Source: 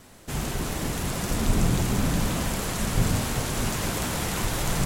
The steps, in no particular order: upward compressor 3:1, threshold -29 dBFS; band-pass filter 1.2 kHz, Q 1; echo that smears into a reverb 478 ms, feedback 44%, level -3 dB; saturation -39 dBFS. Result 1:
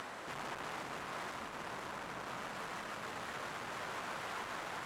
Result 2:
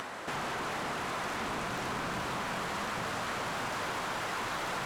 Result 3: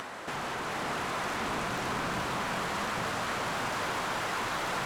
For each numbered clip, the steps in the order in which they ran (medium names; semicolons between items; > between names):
saturation > echo that smears into a reverb > upward compressor > band-pass filter; band-pass filter > saturation > echo that smears into a reverb > upward compressor; band-pass filter > saturation > upward compressor > echo that smears into a reverb